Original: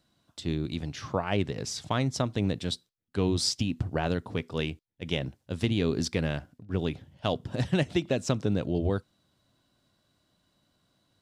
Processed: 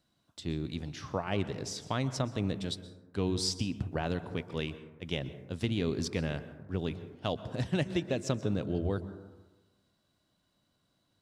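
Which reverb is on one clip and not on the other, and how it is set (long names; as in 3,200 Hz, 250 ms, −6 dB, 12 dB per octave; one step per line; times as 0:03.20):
dense smooth reverb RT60 1.2 s, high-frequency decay 0.3×, pre-delay 110 ms, DRR 13 dB
level −4.5 dB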